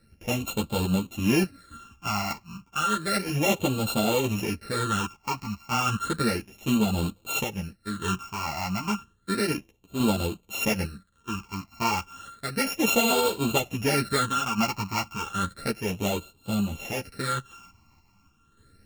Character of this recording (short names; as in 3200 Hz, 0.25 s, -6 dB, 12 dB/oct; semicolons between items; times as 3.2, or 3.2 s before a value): a buzz of ramps at a fixed pitch in blocks of 32 samples; phasing stages 8, 0.32 Hz, lowest notch 470–1800 Hz; random-step tremolo; a shimmering, thickened sound